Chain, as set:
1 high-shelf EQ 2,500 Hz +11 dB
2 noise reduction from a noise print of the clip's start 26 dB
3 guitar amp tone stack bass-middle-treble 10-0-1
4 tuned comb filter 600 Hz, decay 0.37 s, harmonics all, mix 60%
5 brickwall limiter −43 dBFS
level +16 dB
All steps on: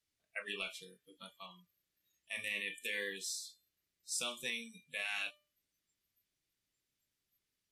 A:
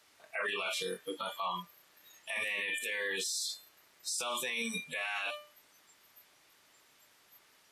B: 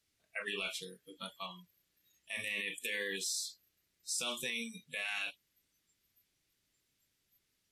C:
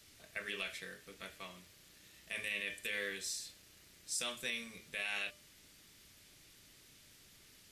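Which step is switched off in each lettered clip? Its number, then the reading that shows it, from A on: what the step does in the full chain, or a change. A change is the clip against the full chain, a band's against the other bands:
3, 1 kHz band +7.5 dB
4, 125 Hz band +2.5 dB
2, 125 Hz band +3.5 dB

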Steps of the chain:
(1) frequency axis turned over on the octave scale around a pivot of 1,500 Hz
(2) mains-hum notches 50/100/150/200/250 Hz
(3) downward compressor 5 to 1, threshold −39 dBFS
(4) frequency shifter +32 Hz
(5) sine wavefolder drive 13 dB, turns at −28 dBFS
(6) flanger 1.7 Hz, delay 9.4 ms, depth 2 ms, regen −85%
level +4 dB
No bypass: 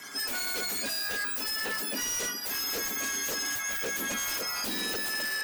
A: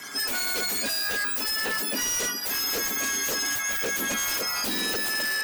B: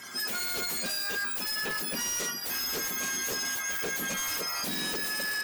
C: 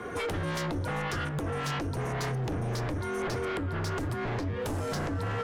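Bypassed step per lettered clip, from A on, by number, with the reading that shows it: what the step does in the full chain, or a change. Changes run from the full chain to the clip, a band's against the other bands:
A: 6, change in integrated loudness +4.5 LU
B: 4, 125 Hz band +3.5 dB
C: 1, 125 Hz band +23.5 dB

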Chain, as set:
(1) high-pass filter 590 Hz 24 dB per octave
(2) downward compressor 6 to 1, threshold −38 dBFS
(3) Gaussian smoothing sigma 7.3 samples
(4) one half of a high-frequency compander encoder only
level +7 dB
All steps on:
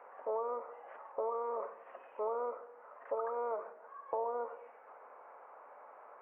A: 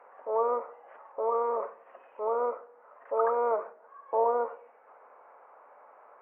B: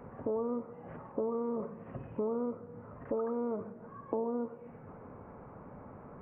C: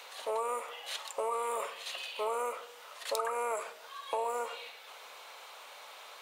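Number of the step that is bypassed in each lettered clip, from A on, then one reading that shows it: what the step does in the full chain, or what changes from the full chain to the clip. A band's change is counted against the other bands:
2, average gain reduction 3.0 dB
1, 250 Hz band +28.0 dB
3, 2 kHz band +12.5 dB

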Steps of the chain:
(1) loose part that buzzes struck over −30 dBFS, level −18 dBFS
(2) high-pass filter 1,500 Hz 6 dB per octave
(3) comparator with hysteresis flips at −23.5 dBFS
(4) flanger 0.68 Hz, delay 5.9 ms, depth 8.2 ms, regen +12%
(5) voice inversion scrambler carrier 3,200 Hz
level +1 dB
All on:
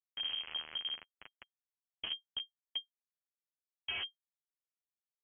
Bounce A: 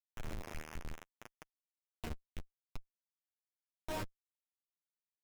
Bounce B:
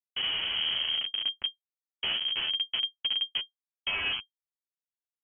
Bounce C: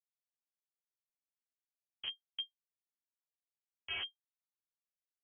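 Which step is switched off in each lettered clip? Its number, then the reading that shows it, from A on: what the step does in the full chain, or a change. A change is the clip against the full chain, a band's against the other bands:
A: 5, 2 kHz band −18.0 dB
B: 2, change in crest factor −4.0 dB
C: 1, change in crest factor +3.5 dB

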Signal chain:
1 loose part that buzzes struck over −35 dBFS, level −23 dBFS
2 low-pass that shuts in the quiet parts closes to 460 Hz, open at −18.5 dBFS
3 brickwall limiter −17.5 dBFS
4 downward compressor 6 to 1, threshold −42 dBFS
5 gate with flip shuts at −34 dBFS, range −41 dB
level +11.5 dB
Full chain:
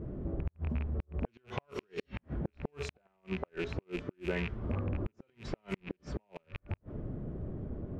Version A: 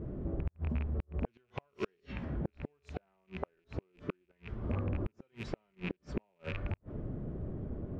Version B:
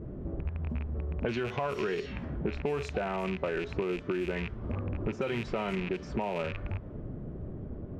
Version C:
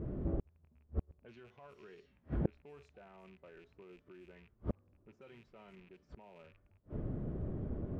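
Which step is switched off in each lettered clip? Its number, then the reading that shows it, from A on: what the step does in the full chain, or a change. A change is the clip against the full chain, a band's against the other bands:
3, change in momentary loudness spread +3 LU
5, change in crest factor −2.5 dB
4, average gain reduction 10.0 dB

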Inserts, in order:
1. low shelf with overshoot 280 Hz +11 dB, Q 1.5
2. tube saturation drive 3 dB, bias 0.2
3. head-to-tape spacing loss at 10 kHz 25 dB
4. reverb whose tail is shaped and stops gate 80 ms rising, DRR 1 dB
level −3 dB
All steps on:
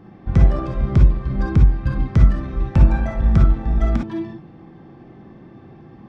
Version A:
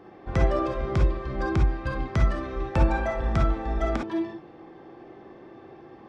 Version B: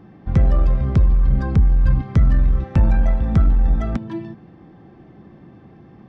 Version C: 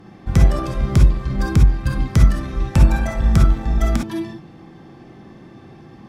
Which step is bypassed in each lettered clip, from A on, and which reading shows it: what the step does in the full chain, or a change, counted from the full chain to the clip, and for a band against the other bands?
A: 1, 125 Hz band −12.0 dB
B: 4, change in crest factor −4.5 dB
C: 3, 2 kHz band +3.5 dB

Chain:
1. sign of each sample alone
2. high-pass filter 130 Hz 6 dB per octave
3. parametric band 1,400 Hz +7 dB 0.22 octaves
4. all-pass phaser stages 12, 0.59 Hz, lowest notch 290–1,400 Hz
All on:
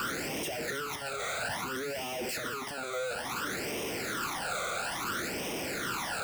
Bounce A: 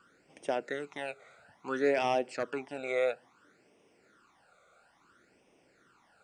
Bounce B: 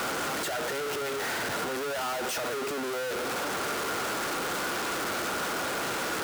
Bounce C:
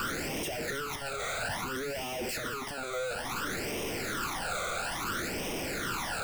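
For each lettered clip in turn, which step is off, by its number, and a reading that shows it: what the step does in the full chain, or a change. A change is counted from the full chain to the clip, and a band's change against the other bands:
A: 1, change in crest factor +7.5 dB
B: 4, 125 Hz band −3.0 dB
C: 2, 125 Hz band +3.0 dB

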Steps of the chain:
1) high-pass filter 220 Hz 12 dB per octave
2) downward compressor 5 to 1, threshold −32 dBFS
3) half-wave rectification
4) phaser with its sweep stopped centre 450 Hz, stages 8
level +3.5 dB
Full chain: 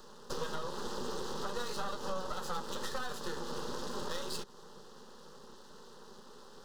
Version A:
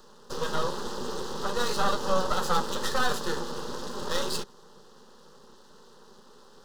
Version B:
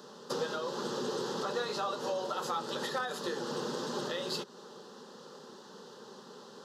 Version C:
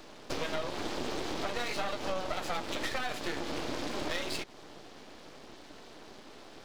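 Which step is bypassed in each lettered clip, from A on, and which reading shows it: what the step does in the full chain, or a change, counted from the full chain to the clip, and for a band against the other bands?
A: 2, change in crest factor +2.5 dB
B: 3, 8 kHz band −3.0 dB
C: 4, 2 kHz band +5.0 dB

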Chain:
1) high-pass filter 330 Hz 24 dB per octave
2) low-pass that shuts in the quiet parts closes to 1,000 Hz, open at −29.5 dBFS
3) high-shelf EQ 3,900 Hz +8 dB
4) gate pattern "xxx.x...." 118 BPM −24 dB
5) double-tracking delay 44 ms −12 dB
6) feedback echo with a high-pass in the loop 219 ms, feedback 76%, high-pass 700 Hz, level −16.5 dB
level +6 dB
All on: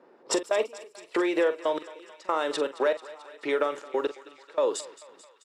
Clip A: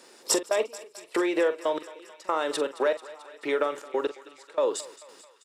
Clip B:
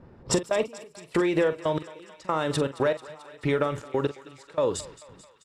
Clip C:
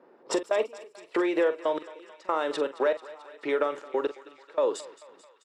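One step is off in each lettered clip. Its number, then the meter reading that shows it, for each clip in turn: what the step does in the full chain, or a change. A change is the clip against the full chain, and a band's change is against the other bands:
2, 8 kHz band +5.0 dB
1, 250 Hz band +3.5 dB
3, 4 kHz band −3.5 dB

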